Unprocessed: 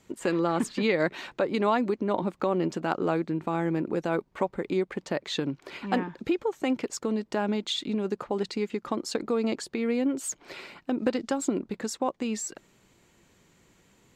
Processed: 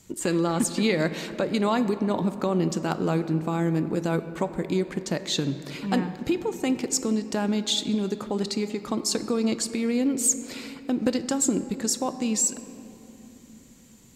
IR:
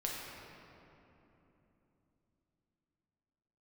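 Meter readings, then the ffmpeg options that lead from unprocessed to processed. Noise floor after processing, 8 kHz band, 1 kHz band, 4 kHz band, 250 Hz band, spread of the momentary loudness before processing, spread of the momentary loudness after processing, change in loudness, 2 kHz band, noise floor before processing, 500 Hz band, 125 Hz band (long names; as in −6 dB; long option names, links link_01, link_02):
−51 dBFS, +11.5 dB, −0.5 dB, +5.5 dB, +3.5 dB, 6 LU, 6 LU, +3.0 dB, 0.0 dB, −64 dBFS, +0.5 dB, +6.5 dB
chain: -filter_complex "[0:a]bass=frequency=250:gain=9,treble=frequency=4000:gain=14,asplit=2[link_01][link_02];[1:a]atrim=start_sample=2205[link_03];[link_02][link_03]afir=irnorm=-1:irlink=0,volume=-10dB[link_04];[link_01][link_04]amix=inputs=2:normalize=0,volume=-3dB"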